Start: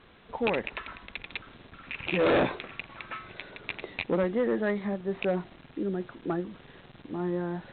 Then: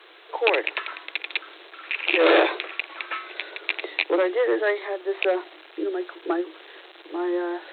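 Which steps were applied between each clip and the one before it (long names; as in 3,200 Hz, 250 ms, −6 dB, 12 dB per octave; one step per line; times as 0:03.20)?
Chebyshev high-pass filter 310 Hz, order 10
high-shelf EQ 2,900 Hz +8.5 dB
level +6.5 dB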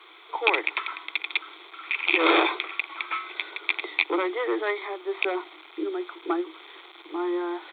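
comb filter 0.9 ms, depth 67%
level −1.5 dB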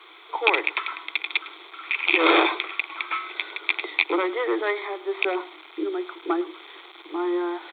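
single-tap delay 105 ms −18.5 dB
level +2 dB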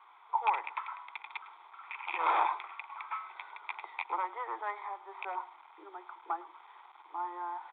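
four-pole ladder band-pass 980 Hz, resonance 70%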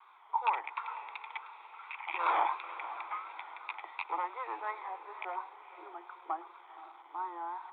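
pitch vibrato 2.8 Hz 78 cents
feedback delay with all-pass diffusion 510 ms, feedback 46%, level −13.5 dB
level −1 dB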